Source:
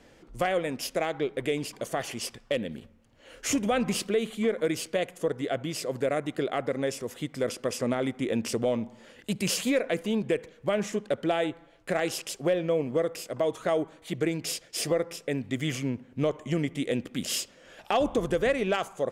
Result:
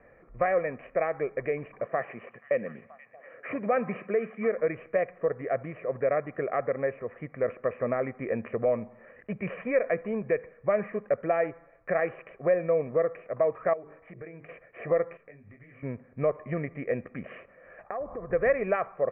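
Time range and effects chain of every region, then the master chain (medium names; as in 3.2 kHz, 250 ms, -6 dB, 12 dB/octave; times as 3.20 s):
1.86–4.55 s: high-pass 130 Hz 24 dB/octave + repeats whose band climbs or falls 240 ms, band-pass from 4.1 kHz, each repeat -0.7 oct, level -10 dB
13.73–14.49 s: hum notches 50/100/150/200/250/300/350/400/450 Hz + compression 4:1, threshold -39 dBFS
15.17–15.83 s: compression 12:1, threshold -38 dBFS + peaking EQ 600 Hz -4.5 dB 1.8 oct + detune thickener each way 56 cents
17.83–18.33 s: steep low-pass 2 kHz + compression, threshold -32 dBFS
whole clip: steep low-pass 2.3 kHz 72 dB/octave; bass shelf 200 Hz -6.5 dB; comb 1.7 ms, depth 52%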